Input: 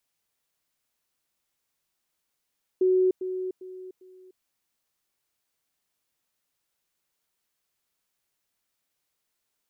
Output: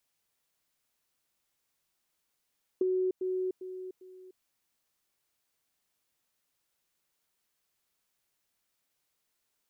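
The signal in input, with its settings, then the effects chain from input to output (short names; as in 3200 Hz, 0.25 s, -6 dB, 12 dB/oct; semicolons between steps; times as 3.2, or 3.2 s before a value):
level ladder 371 Hz -18 dBFS, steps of -10 dB, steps 4, 0.30 s 0.10 s
compressor, threshold -28 dBFS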